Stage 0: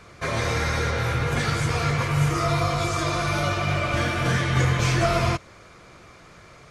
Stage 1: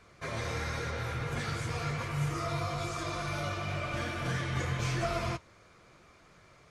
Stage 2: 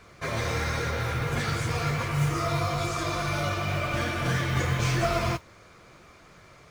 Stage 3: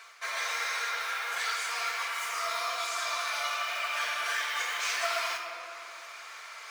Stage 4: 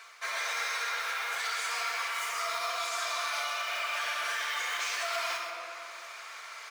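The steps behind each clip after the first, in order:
flange 0.97 Hz, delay 2.6 ms, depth 9.3 ms, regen -65%; trim -6.5 dB
modulation noise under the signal 27 dB; trim +6.5 dB
Bessel high-pass 1.2 kHz, order 4; simulated room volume 1600 m³, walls mixed, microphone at 1.6 m; reverse; upward compressor, threshold -34 dBFS; reverse
peak limiter -23.5 dBFS, peak gain reduction 5.5 dB; on a send: delay 125 ms -9.5 dB

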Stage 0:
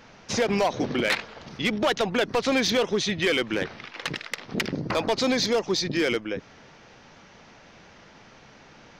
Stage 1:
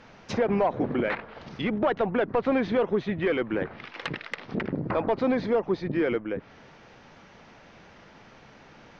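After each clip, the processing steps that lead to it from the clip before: low-pass that closes with the level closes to 1.6 kHz, closed at -25 dBFS; treble shelf 5.6 kHz -12 dB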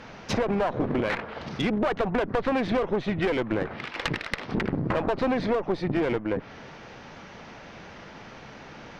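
single-diode clipper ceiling -31.5 dBFS; compression, threshold -29 dBFS, peak gain reduction 7 dB; trim +7.5 dB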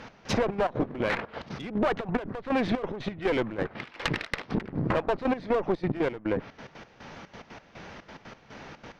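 trance gate "x..xxx.x." 180 bpm -12 dB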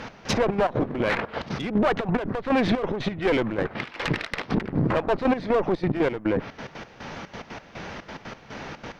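peak limiter -21 dBFS, peak gain reduction 9.5 dB; trim +7.5 dB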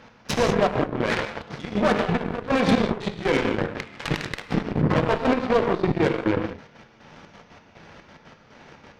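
gated-style reverb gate 220 ms flat, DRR 1 dB; Chebyshev shaper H 5 -35 dB, 7 -18 dB, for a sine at -8.5 dBFS

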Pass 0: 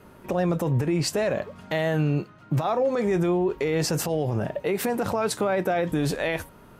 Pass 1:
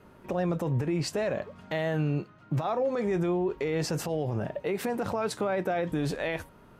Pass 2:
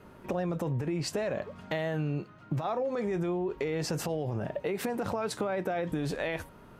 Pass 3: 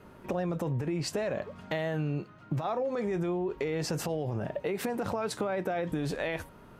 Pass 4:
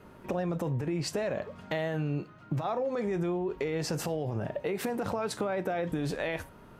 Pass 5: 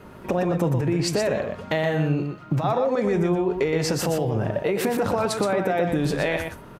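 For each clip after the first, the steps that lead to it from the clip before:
treble shelf 8.1 kHz -8.5 dB; trim -4.5 dB
compression, threshold -30 dBFS, peak gain reduction 6.5 dB; trim +2 dB
no audible change
reverberation RT60 0.30 s, pre-delay 27 ms, DRR 18.5 dB
delay 121 ms -6 dB; trim +8 dB

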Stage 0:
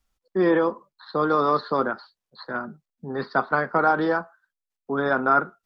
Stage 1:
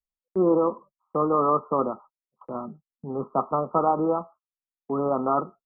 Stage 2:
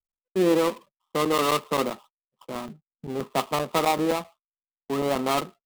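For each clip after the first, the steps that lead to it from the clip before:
Chebyshev low-pass 1.3 kHz, order 10; gate -47 dBFS, range -22 dB
dead-time distortion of 0.21 ms; crackling interface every 0.13 s, samples 256, zero, from 0.86 s

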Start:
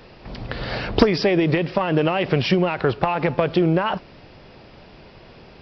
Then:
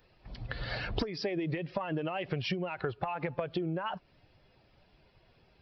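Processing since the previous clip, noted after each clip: expander on every frequency bin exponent 1.5; compression 8:1, threshold -29 dBFS, peak gain reduction 18.5 dB; trim -1.5 dB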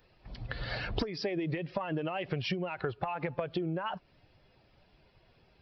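no audible change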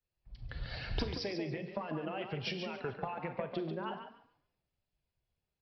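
frequency-shifting echo 143 ms, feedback 32%, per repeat +37 Hz, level -6 dB; Schroeder reverb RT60 0.63 s, combs from 32 ms, DRR 9.5 dB; three bands expanded up and down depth 70%; trim -6 dB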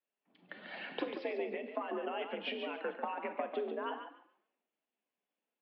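mistuned SSB +61 Hz 200–3200 Hz; trim +1 dB

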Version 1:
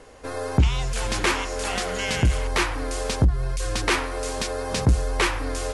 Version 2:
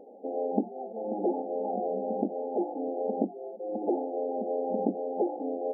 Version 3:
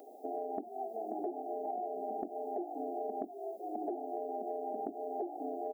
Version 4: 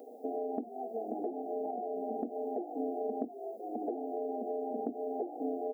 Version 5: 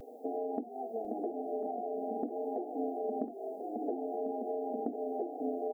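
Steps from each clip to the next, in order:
FFT band-pass 190–870 Hz
tilt EQ +5.5 dB/octave; comb 2.9 ms, depth 94%; compression 10:1, threshold -36 dBFS, peak gain reduction 11.5 dB; trim +1.5 dB
small resonant body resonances 240/470 Hz, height 14 dB, ringing for 50 ms; trim -3 dB
vibrato 0.51 Hz 24 cents; delay 1048 ms -10.5 dB

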